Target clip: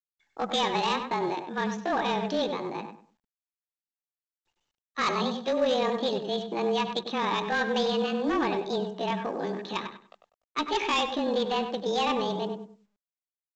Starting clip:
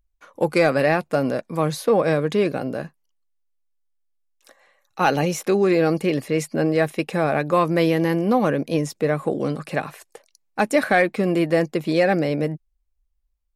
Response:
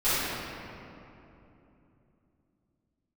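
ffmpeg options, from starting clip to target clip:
-filter_complex "[0:a]afreqshift=-24,highpass=110,equalizer=f=450:t=q:w=4:g=-8,equalizer=f=1.4k:t=q:w=4:g=-3,equalizer=f=2.4k:t=q:w=4:g=7,lowpass=f=3.7k:w=0.5412,lowpass=f=3.7k:w=1.3066,asoftclip=type=hard:threshold=-15.5dB,asplit=2[a][b];[1:a]atrim=start_sample=2205,atrim=end_sample=6174[c];[b][c]afir=irnorm=-1:irlink=0,volume=-28dB[d];[a][d]amix=inputs=2:normalize=0,asetrate=68011,aresample=44100,atempo=0.64842,anlmdn=0.631,asplit=2[e][f];[f]adelay=98,lowpass=f=2k:p=1,volume=-6.5dB,asplit=2[g][h];[h]adelay=98,lowpass=f=2k:p=1,volume=0.26,asplit=2[i][j];[j]adelay=98,lowpass=f=2k:p=1,volume=0.26[k];[e][g][i][k]amix=inputs=4:normalize=0,volume=-6dB" -ar 16000 -c:a pcm_mulaw

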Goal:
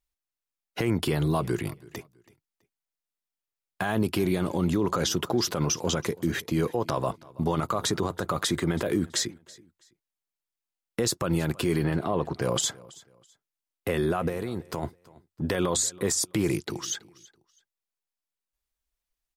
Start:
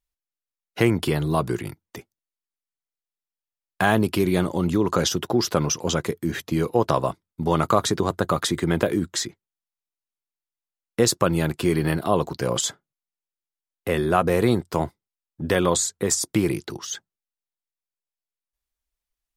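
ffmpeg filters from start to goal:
-filter_complex "[0:a]asplit=3[a][b][c];[a]afade=t=out:st=11.83:d=0.02[d];[b]aemphasis=mode=reproduction:type=75kf,afade=t=in:st=11.83:d=0.02,afade=t=out:st=12.41:d=0.02[e];[c]afade=t=in:st=12.41:d=0.02[f];[d][e][f]amix=inputs=3:normalize=0,alimiter=limit=-16dB:level=0:latency=1:release=45,asplit=3[g][h][i];[g]afade=t=out:st=14.28:d=0.02[j];[h]acompressor=threshold=-28dB:ratio=6,afade=t=in:st=14.28:d=0.02,afade=t=out:st=14.82:d=0.02[k];[i]afade=t=in:st=14.82:d=0.02[l];[j][k][l]amix=inputs=3:normalize=0,aecho=1:1:328|656:0.0794|0.0214"

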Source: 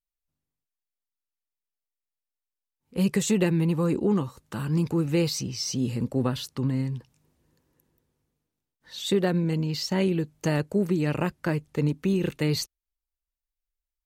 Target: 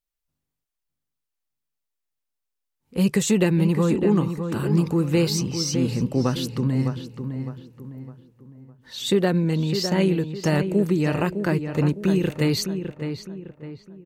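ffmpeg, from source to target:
-filter_complex "[0:a]asplit=2[a][b];[b]adelay=608,lowpass=f=2.2k:p=1,volume=-7.5dB,asplit=2[c][d];[d]adelay=608,lowpass=f=2.2k:p=1,volume=0.4,asplit=2[e][f];[f]adelay=608,lowpass=f=2.2k:p=1,volume=0.4,asplit=2[g][h];[h]adelay=608,lowpass=f=2.2k:p=1,volume=0.4,asplit=2[i][j];[j]adelay=608,lowpass=f=2.2k:p=1,volume=0.4[k];[a][c][e][g][i][k]amix=inputs=6:normalize=0,volume=3.5dB"

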